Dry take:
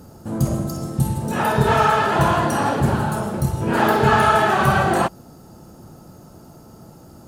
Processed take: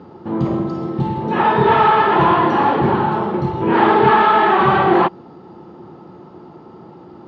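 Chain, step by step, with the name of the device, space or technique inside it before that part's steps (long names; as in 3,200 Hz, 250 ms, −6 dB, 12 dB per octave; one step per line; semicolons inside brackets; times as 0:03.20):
0:04.11–0:04.60: elliptic band-pass filter 190–7,600 Hz
overdrive pedal into a guitar cabinet (mid-hump overdrive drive 15 dB, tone 2,800 Hz, clips at −2.5 dBFS; loudspeaker in its box 81–3,400 Hz, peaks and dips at 180 Hz +4 dB, 360 Hz +9 dB, 630 Hz −8 dB, 910 Hz +3 dB, 1,500 Hz −7 dB, 2,600 Hz −4 dB)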